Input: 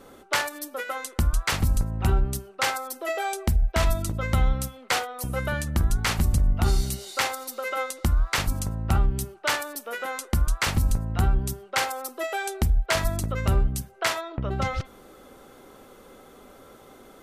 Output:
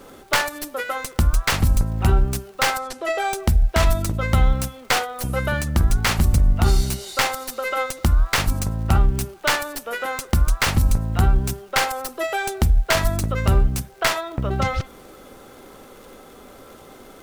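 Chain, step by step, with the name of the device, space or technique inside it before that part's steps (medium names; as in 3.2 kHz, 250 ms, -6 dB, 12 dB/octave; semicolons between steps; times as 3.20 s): record under a worn stylus (tracing distortion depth 0.054 ms; crackle; pink noise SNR 36 dB); 2.78–3.23 s: low-pass 6.3 kHz -> 11 kHz 12 dB/octave; trim +5 dB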